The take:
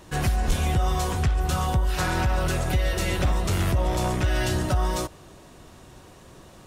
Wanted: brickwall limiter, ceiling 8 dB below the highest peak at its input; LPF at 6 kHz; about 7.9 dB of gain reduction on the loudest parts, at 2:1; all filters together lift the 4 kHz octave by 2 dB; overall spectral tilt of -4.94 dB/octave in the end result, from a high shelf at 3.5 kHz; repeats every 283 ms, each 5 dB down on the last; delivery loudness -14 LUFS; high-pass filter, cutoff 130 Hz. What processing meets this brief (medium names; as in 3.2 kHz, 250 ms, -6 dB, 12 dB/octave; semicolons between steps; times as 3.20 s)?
high-pass 130 Hz; low-pass 6 kHz; treble shelf 3.5 kHz -4 dB; peaking EQ 4 kHz +6 dB; compression 2:1, threshold -37 dBFS; peak limiter -29.5 dBFS; feedback delay 283 ms, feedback 56%, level -5 dB; trim +23.5 dB